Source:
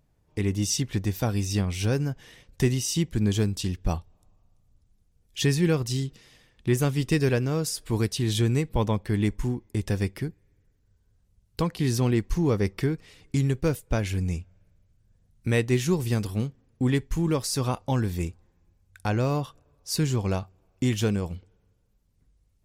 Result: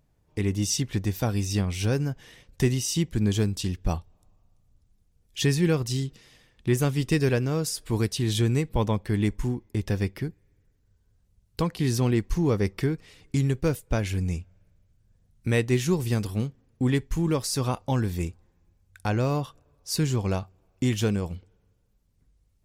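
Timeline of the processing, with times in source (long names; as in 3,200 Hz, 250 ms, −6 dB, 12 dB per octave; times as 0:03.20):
0:09.63–0:10.25: parametric band 8,800 Hz −6 dB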